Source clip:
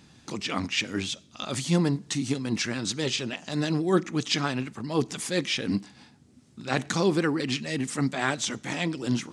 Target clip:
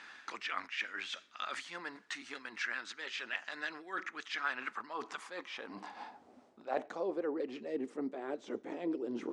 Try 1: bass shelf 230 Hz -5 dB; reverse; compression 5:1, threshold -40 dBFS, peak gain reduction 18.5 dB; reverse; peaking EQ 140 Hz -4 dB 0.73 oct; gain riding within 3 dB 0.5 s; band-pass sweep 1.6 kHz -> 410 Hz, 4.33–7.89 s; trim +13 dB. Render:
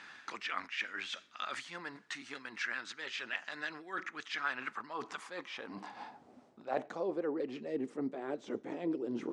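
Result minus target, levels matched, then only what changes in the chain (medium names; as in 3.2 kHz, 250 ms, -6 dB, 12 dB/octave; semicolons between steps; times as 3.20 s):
125 Hz band +6.5 dB
change: peaking EQ 140 Hz -14.5 dB 0.73 oct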